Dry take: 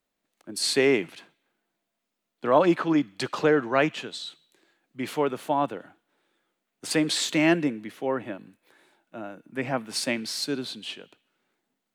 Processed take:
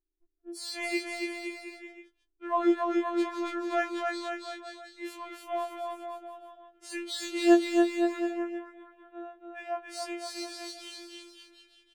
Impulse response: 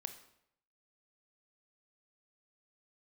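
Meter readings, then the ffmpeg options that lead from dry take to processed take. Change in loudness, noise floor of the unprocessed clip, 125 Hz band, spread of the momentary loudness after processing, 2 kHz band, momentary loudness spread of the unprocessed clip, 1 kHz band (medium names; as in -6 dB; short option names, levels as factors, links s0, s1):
-5.0 dB, -82 dBFS, under -35 dB, 19 LU, -6.0 dB, 18 LU, -3.5 dB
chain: -filter_complex "[0:a]anlmdn=0.0631,bandreject=f=800:w=12,afftfilt=real='hypot(re,im)*cos(PI*b)':imag='0':win_size=2048:overlap=0.75,flanger=delay=9.8:depth=2.4:regen=56:speed=0.71:shape=triangular,acrossover=split=890[s0][s1];[s1]asoftclip=type=tanh:threshold=0.0794[s2];[s0][s2]amix=inputs=2:normalize=0,aeval=exprs='val(0)+0.00562*(sin(2*PI*60*n/s)+sin(2*PI*2*60*n/s)/2+sin(2*PI*3*60*n/s)/3+sin(2*PI*4*60*n/s)/4+sin(2*PI*5*60*n/s)/5)':c=same,asplit=2[s3][s4];[s4]aecho=0:1:280|518|720.3|892.3|1038:0.631|0.398|0.251|0.158|0.1[s5];[s3][s5]amix=inputs=2:normalize=0,afftfilt=real='re*4*eq(mod(b,16),0)':imag='im*4*eq(mod(b,16),0)':win_size=2048:overlap=0.75,volume=0.668"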